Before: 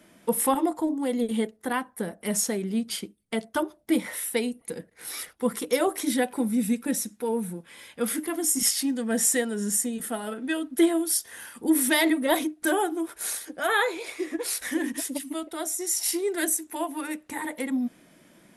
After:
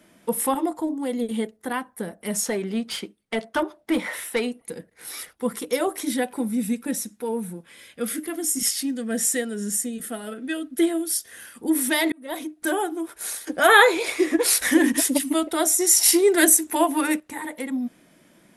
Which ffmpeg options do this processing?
-filter_complex "[0:a]asplit=3[a][b][c];[a]afade=t=out:st=2.45:d=0.02[d];[b]asplit=2[e][f];[f]highpass=f=720:p=1,volume=15dB,asoftclip=type=tanh:threshold=-12.5dB[g];[e][g]amix=inputs=2:normalize=0,lowpass=f=2.3k:p=1,volume=-6dB,afade=t=in:st=2.45:d=0.02,afade=t=out:st=4.6:d=0.02[h];[c]afade=t=in:st=4.6:d=0.02[i];[d][h][i]amix=inputs=3:normalize=0,asettb=1/sr,asplit=3[j][k][l];[j]atrim=end=7.724[m];[k]atrim=start=7.72:end=11.57,asetpts=PTS-STARTPTS,afade=t=in:d=0.004:c=qsin,afade=t=out:st=3.846:d=0.004:c=qsin,equalizer=f=920:w=3.5:g=-10.5[n];[l]atrim=start=11.566[o];[m][n]acrossfade=d=0.004:c1=hsin:c2=qsin[p];[p][o]acrossfade=d=0.004:c1=qsin:c2=hsin,asplit=4[q][r][s][t];[q]atrim=end=12.12,asetpts=PTS-STARTPTS,afade=t=out:st=12.116:d=0.004:c=hsin[u];[r]atrim=start=12.12:end=13.472,asetpts=PTS-STARTPTS,afade=t=in:d=0.54[v];[s]atrim=start=13.468:end=17.202,asetpts=PTS-STARTPTS,volume=10dB[w];[t]atrim=start=17.198[x];[u][v]concat=n=2:v=0:a=1[y];[y][w]acrossfade=d=0.004:c1=hsin:c2=hsin[z];[z][x]acrossfade=d=0.004:c1=hsin:c2=hsin"

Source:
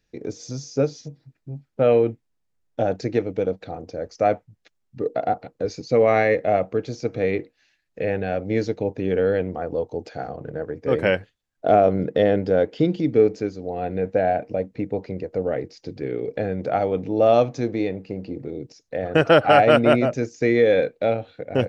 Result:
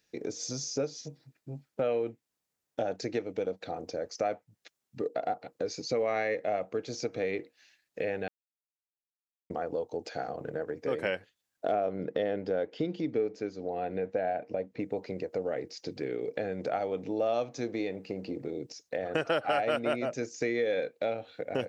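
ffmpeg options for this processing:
-filter_complex "[0:a]asettb=1/sr,asplit=3[a][b][c];[a]atrim=end=11.724[d];[b]atrim=start=11.72:end=14.8,asetpts=PTS-STARTPTS,afade=t=in:d=0.004:c=qsin,afade=t=out:st=3.076:d=0.004:c=qsin,highshelf=f=6k:g=-12[e];[c]atrim=start=14.796[f];[d][e]acrossfade=d=0.004:c1=hsin:c2=qsin[g];[g][f]acrossfade=d=0.004:c1=qsin:c2=hsin,asplit=3[h][i][j];[h]atrim=end=8.28,asetpts=PTS-STARTPTS,afade=t=out:st=8.276:d=0.004:c=hsin[k];[i]atrim=start=8.28:end=9.5,asetpts=PTS-STARTPTS,volume=0[l];[j]atrim=start=9.5,asetpts=PTS-STARTPTS,afade=t=in:d=0.004:c=hsin[m];[k][l][m]concat=n=3:v=0:a=1,highpass=f=310:p=1,highshelf=f=5.2k:g=7.5,acompressor=threshold=-32dB:ratio=2.5"

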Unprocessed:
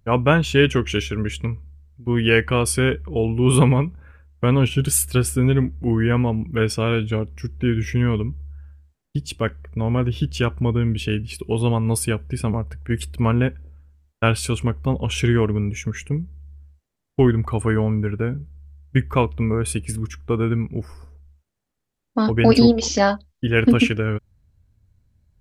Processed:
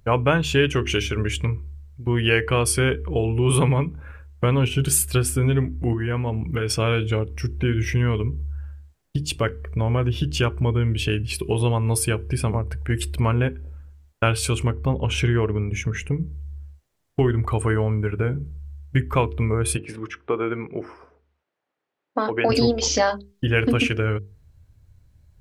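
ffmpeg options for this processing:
-filter_complex "[0:a]asettb=1/sr,asplit=3[a][b][c];[a]atrim=end=5.934[d];[b]atrim=start=5.93:end=6.79,asetpts=PTS-STARTPTS,afade=t=in:d=0.004:c=qsin,afade=t=out:st=0.856:d=0.004:c=qsin,acompressor=threshold=-22dB:ratio=6:attack=3.2:release=140:knee=1:detection=peak[e];[c]atrim=start=6.786[f];[d][e]acrossfade=d=0.004:c1=hsin:c2=qsin[g];[g][f]acrossfade=d=0.004:c1=qsin:c2=hsin,asettb=1/sr,asplit=3[h][i][j];[h]atrim=end=14.724[k];[i]atrim=start=14.72:end=16.21,asetpts=PTS-STARTPTS,afade=t=in:d=0.004:c=qsin,afade=t=out:st=1.486:d=0.004:c=qsin,highshelf=f=4.2k:g=-8.5[l];[j]atrim=start=16.206[m];[k][l]acrossfade=d=0.004:c1=hsin:c2=qsin[n];[n][m]acrossfade=d=0.004:c1=qsin:c2=hsin,asplit=3[o][p][q];[o]afade=t=out:st=19.76:d=0.02[r];[p]highpass=320,lowpass=2.6k,afade=t=in:st=19.76:d=0.02,afade=t=out:st=22.48:d=0.02[s];[q]afade=t=in:st=22.48:d=0.02[t];[r][s][t]amix=inputs=3:normalize=0,equalizer=f=220:t=o:w=0.41:g=-7.5,acompressor=threshold=-29dB:ratio=2,bandreject=f=50:t=h:w=6,bandreject=f=100:t=h:w=6,bandreject=f=150:t=h:w=6,bandreject=f=200:t=h:w=6,bandreject=f=250:t=h:w=6,bandreject=f=300:t=h:w=6,bandreject=f=350:t=h:w=6,bandreject=f=400:t=h:w=6,bandreject=f=450:t=h:w=6,volume=7dB"

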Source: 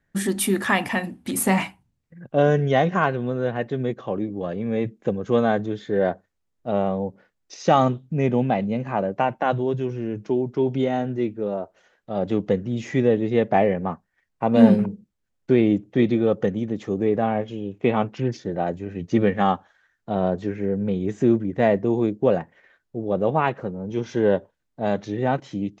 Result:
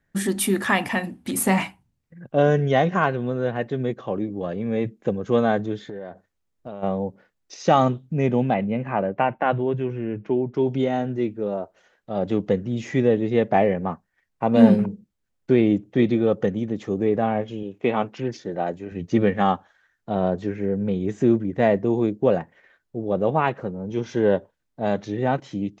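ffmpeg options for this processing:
-filter_complex "[0:a]asplit=3[a][b][c];[a]afade=t=out:st=5.81:d=0.02[d];[b]acompressor=threshold=-30dB:ratio=16:attack=3.2:release=140:knee=1:detection=peak,afade=t=in:st=5.81:d=0.02,afade=t=out:st=6.82:d=0.02[e];[c]afade=t=in:st=6.82:d=0.02[f];[d][e][f]amix=inputs=3:normalize=0,asettb=1/sr,asplit=3[g][h][i];[g]atrim=end=8.544[j];[h]atrim=start=8.54:end=10.54,asetpts=PTS-STARTPTS,afade=t=in:d=0.004:c=qsin,afade=t=out:st=1.996:d=0.004:c=qsin,highshelf=f=3.5k:t=q:w=1.5:g=-11[k];[i]atrim=start=10.536[l];[j][k]acrossfade=d=0.004:c1=hsin:c2=qsin[m];[m][l]acrossfade=d=0.004:c1=qsin:c2=hsin,asettb=1/sr,asplit=3[n][o][p];[n]atrim=end=17.634[q];[o]atrim=start=17.63:end=18.92,asetpts=PTS-STARTPTS,afade=t=in:d=0.004:c=qsin,afade=t=out:st=1.286:d=0.004:c=qsin,highpass=f=230:p=1[r];[p]atrim=start=18.916[s];[q][r]acrossfade=d=0.004:c1=hsin:c2=qsin[t];[t][s]acrossfade=d=0.004:c1=qsin:c2=hsin"

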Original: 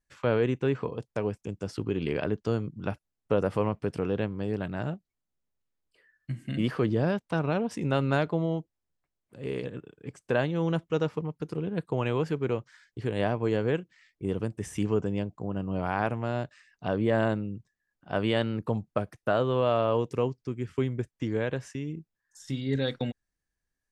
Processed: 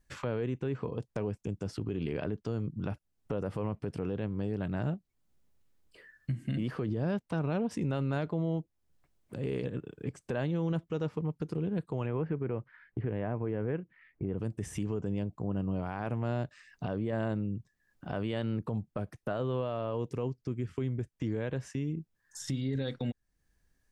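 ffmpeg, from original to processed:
-filter_complex "[0:a]asplit=3[a][b][c];[a]afade=t=out:st=12.05:d=0.02[d];[b]lowpass=f=2.3k:w=0.5412,lowpass=f=2.3k:w=1.3066,afade=t=in:st=12.05:d=0.02,afade=t=out:st=14.37:d=0.02[e];[c]afade=t=in:st=14.37:d=0.02[f];[d][e][f]amix=inputs=3:normalize=0,lowshelf=f=360:g=6.5,acompressor=threshold=-48dB:ratio=2,alimiter=level_in=8dB:limit=-24dB:level=0:latency=1:release=27,volume=-8dB,volume=8dB"

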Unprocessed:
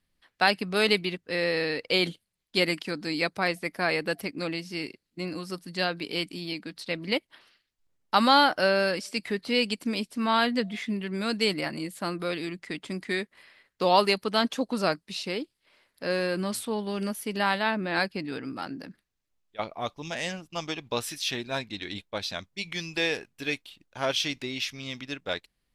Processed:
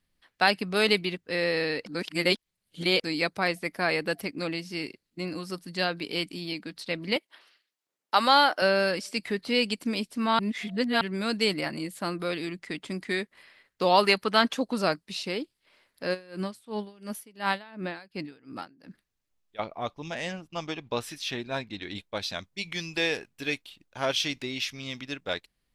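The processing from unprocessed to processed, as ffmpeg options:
-filter_complex "[0:a]asettb=1/sr,asplit=3[a][b][c];[a]atrim=end=7.164[d];[b]atrim=start=7.16:end=8.62,asetpts=PTS-STARTPTS,afade=t=in:d=0.004:c=qsin,afade=t=out:st=1.456:d=0.004:c=qsin,highpass=360[e];[c]atrim=start=8.616[f];[d][e]acrossfade=d=0.004:c1=hsin:c2=qsin[g];[g][f]acrossfade=d=0.004:c1=qsin:c2=hsin,asettb=1/sr,asplit=3[h][i][j];[h]atrim=end=14.034[k];[i]atrim=start=14.03:end=14.55,asetpts=PTS-STARTPTS,afade=t=in:d=0.004:c=qsin,afade=t=out:st=0.516:d=0.004:c=qsin,equalizer=f=1.6k:w=0.78:g=6[l];[j]atrim=start=14.546[m];[k][l]acrossfade=d=0.004:c1=hsin:c2=qsin[n];[n][m]acrossfade=d=0.004:c1=qsin:c2=hsin,asplit=3[o][p][q];[o]afade=t=out:st=16.13:d=0.02[r];[p]aeval=exprs='val(0)*pow(10,-24*(0.5-0.5*cos(2*PI*2.8*n/s))/20)':c=same,afade=t=in:st=16.13:d=0.02,afade=t=out:st=18.88:d=0.02[s];[q]afade=t=in:st=18.88:d=0.02[t];[r][s][t]amix=inputs=3:normalize=0,asettb=1/sr,asplit=3[u][v][w];[u]atrim=end=19.604[x];[v]atrim=start=19.6:end=21.95,asetpts=PTS-STARTPTS,afade=t=in:d=0.004:c=qsin,afade=t=out:st=2.346:d=0.004:c=qsin,highshelf=f=3.9k:g=-8[y];[w]atrim=start=21.946[z];[x][y]acrossfade=d=0.004:c1=hsin:c2=qsin[aa];[aa][z]acrossfade=d=0.004:c1=qsin:c2=hsin,asplit=5[ab][ac][ad][ae][af];[ab]atrim=end=1.862[ag];[ac]atrim=start=1.858:end=3.042,asetpts=PTS-STARTPTS,areverse[ah];[ad]atrim=start=3.038:end=10.392[ai];[ae]atrim=start=10.388:end=11.012,asetpts=PTS-STARTPTS,areverse[aj];[af]atrim=start=11.008[ak];[ag][ah]acrossfade=d=0.004:c1=hsin:c2=hsin[al];[al][ai]acrossfade=d=0.004:c1=hsin:c2=hsin[am];[am][aj]acrossfade=d=0.004:c1=hsin:c2=hsin[an];[an][ak]acrossfade=d=0.004:c1=hsin:c2=hsin"

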